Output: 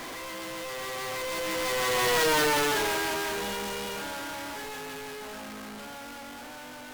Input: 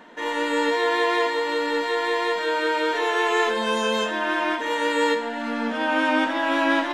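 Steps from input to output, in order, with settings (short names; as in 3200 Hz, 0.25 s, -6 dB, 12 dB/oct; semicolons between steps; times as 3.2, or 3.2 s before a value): infinite clipping; Doppler pass-by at 2.31, 35 m/s, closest 14 m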